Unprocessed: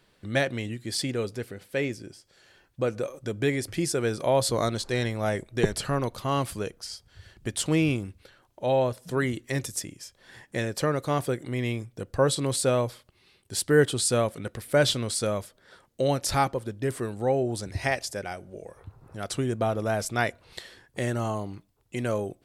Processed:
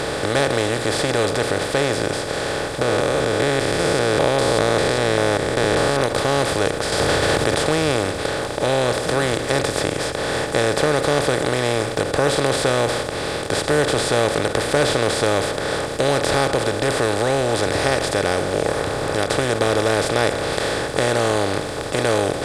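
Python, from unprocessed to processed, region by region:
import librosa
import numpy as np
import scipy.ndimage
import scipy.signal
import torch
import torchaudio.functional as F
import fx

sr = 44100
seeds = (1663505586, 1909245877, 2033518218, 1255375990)

y = fx.chain(x, sr, fx.spec_steps(hold_ms=200),
    fx.high_shelf(hz=5500.0, db=-11.0), at=(2.81, 6.01))
y = fx.chain(y, sr, fx.highpass(hz=59.0, slope=12),
    fx.env_flatten(amount_pct=100), at=(6.92, 7.59))
y = fx.bin_compress(y, sr, power=0.2)
y = fx.high_shelf(y, sr, hz=10000.0, db=-12.0)
y = fx.end_taper(y, sr, db_per_s=160.0)
y = y * librosa.db_to_amplitude(-2.5)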